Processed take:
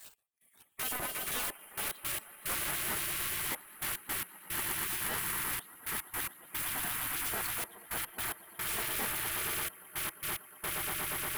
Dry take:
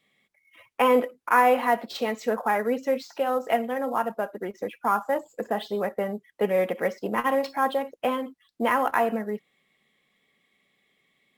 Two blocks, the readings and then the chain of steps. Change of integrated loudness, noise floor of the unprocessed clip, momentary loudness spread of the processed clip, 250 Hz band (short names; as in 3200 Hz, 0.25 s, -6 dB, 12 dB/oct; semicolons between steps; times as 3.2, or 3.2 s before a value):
-8.5 dB, -72 dBFS, 5 LU, -18.0 dB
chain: random spectral dropouts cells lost 35%; resonant high shelf 7700 Hz +13.5 dB, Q 3; on a send: swelling echo 0.118 s, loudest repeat 8, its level -9 dB; on the sum: reverse; upward compressor, threshold -29 dBFS; reverse; sample leveller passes 2; limiter -16.5 dBFS, peak gain reduction 11 dB; small resonant body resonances 660/3100 Hz, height 7 dB, ringing for 95 ms; step gate "x..xxxxxxxx..x." 110 bpm -24 dB; overloaded stage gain 30.5 dB; spectral gate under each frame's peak -15 dB weak; gain +3 dB